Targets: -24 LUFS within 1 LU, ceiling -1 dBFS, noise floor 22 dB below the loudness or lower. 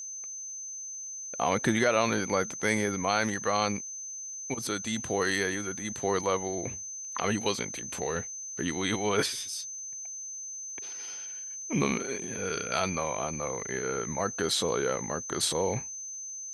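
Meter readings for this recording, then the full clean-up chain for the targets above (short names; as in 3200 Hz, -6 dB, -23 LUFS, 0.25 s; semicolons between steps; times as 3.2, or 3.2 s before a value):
ticks 38/s; steady tone 6200 Hz; tone level -37 dBFS; loudness -30.5 LUFS; peak -11.5 dBFS; loudness target -24.0 LUFS
-> de-click; notch 6200 Hz, Q 30; gain +6.5 dB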